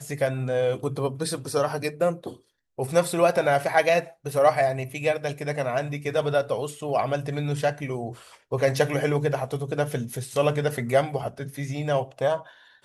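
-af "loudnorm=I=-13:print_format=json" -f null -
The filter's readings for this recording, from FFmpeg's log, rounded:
"input_i" : "-25.8",
"input_tp" : "-6.6",
"input_lra" : "3.5",
"input_thresh" : "-36.0",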